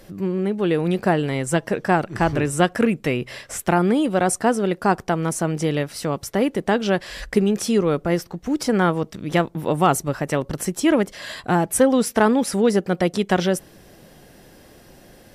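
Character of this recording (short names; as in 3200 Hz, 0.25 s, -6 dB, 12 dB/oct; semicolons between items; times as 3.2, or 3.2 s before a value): noise floor -49 dBFS; spectral tilt -5.5 dB/oct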